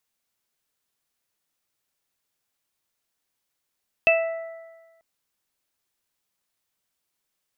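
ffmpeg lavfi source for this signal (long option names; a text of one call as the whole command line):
ffmpeg -f lavfi -i "aevalsrc='0.158*pow(10,-3*t/1.31)*sin(2*PI*659*t)+0.0178*pow(10,-3*t/1.43)*sin(2*PI*1318*t)+0.0335*pow(10,-3*t/1.43)*sin(2*PI*1977*t)+0.237*pow(10,-3*t/0.36)*sin(2*PI*2636*t)':duration=0.94:sample_rate=44100" out.wav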